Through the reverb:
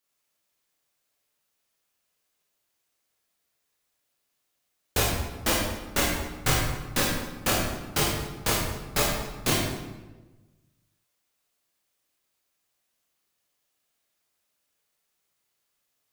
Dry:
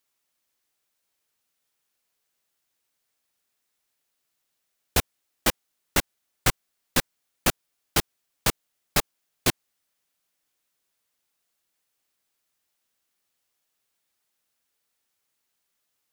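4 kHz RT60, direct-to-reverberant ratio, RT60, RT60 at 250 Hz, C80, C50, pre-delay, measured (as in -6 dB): 0.85 s, -5.5 dB, 1.2 s, 1.5 s, 2.5 dB, 0.0 dB, 19 ms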